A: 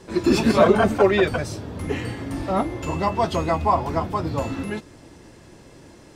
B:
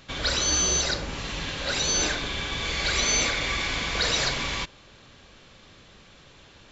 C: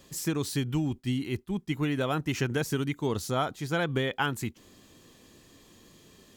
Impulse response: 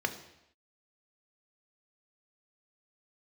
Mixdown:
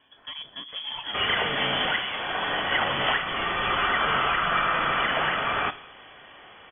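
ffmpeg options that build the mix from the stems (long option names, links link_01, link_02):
-filter_complex "[0:a]adelay=600,volume=-19.5dB,asplit=2[link_01][link_02];[link_02]volume=-11.5dB[link_03];[1:a]highpass=79,adelay=1050,volume=-3.5dB,asplit=2[link_04][link_05];[link_05]volume=-7.5dB[link_06];[2:a]volume=25dB,asoftclip=hard,volume=-25dB,volume=-9.5dB,asplit=2[link_07][link_08];[link_08]volume=-12dB[link_09];[3:a]atrim=start_sample=2205[link_10];[link_03][link_06][link_09]amix=inputs=3:normalize=0[link_11];[link_11][link_10]afir=irnorm=-1:irlink=0[link_12];[link_01][link_04][link_07][link_12]amix=inputs=4:normalize=0,crystalizer=i=6:c=0,lowpass=frequency=3000:width_type=q:width=0.5098,lowpass=frequency=3000:width_type=q:width=0.6013,lowpass=frequency=3000:width_type=q:width=0.9,lowpass=frequency=3000:width_type=q:width=2.563,afreqshift=-3500,alimiter=limit=-13.5dB:level=0:latency=1:release=465"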